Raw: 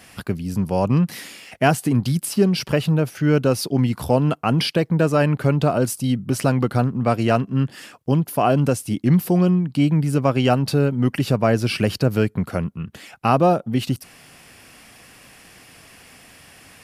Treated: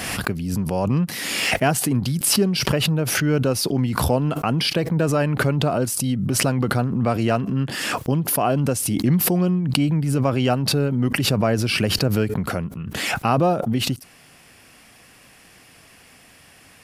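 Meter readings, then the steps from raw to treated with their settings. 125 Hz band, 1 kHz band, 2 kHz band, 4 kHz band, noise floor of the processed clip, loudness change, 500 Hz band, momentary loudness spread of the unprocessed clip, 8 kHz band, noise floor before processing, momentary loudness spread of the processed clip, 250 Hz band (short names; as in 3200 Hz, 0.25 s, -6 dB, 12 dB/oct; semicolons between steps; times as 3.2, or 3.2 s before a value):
-1.5 dB, -1.5 dB, +3.0 dB, +5.5 dB, -50 dBFS, -1.0 dB, -2.0 dB, 8 LU, +8.0 dB, -48 dBFS, 5 LU, -1.5 dB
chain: backwards sustainer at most 28 dB/s; gain -3 dB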